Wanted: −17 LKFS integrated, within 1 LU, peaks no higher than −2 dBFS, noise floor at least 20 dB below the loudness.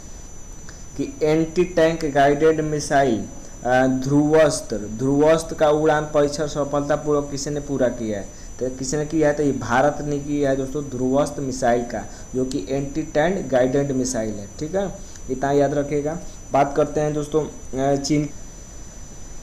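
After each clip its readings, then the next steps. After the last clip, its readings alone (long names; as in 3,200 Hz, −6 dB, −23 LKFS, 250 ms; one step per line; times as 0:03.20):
interfering tone 6,000 Hz; level of the tone −44 dBFS; background noise floor −38 dBFS; target noise floor −41 dBFS; integrated loudness −21.0 LKFS; sample peak −8.5 dBFS; target loudness −17.0 LKFS
→ notch filter 6,000 Hz, Q 30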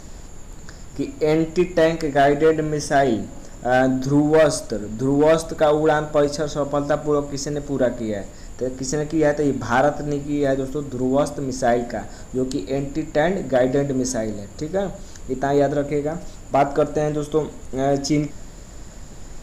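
interfering tone none found; background noise floor −39 dBFS; target noise floor −41 dBFS
→ noise reduction from a noise print 6 dB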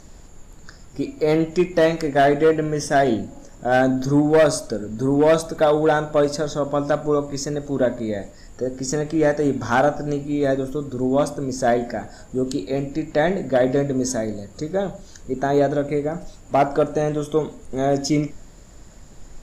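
background noise floor −44 dBFS; integrated loudness −21.0 LKFS; sample peak −9.0 dBFS; target loudness −17.0 LKFS
→ level +4 dB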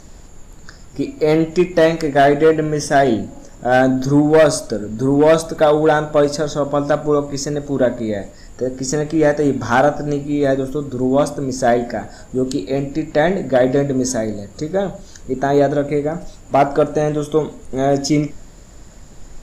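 integrated loudness −17.5 LKFS; sample peak −5.0 dBFS; background noise floor −40 dBFS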